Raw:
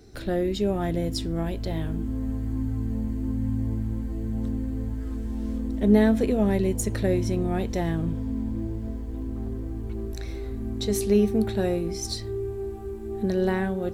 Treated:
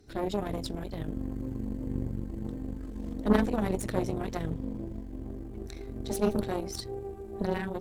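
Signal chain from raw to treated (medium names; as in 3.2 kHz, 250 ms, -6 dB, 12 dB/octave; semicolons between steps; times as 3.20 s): granular stretch 0.56×, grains 78 ms; Chebyshev shaper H 3 -15 dB, 6 -19 dB, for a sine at -8 dBFS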